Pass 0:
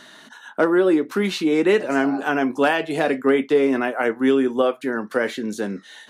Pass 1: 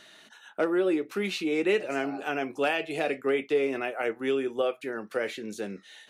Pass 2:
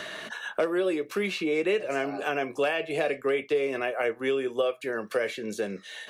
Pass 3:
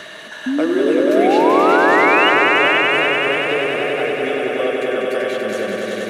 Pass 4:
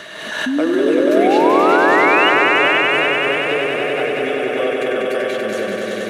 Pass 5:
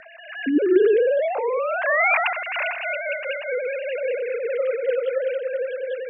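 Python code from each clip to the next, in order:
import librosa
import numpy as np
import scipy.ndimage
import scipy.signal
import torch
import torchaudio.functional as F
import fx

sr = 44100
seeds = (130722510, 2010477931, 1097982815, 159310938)

y1 = fx.graphic_eq_31(x, sr, hz=(160, 250, 1000, 1600, 2500), db=(-4, -10, -8, -4, 7))
y1 = y1 * librosa.db_to_amplitude(-7.0)
y2 = y1 + 0.38 * np.pad(y1, (int(1.8 * sr / 1000.0), 0))[:len(y1)]
y2 = fx.band_squash(y2, sr, depth_pct=70)
y3 = fx.spec_paint(y2, sr, seeds[0], shape='rise', start_s=0.46, length_s=1.84, low_hz=250.0, high_hz=3000.0, level_db=-22.0)
y3 = fx.echo_swell(y3, sr, ms=96, loudest=5, wet_db=-5.0)
y3 = y3 * librosa.db_to_amplitude(3.0)
y4 = fx.pre_swell(y3, sr, db_per_s=42.0)
y5 = fx.sine_speech(y4, sr)
y5 = fx.rotary_switch(y5, sr, hz=0.8, then_hz=5.0, switch_at_s=2.08)
y5 = y5 * librosa.db_to_amplitude(-5.0)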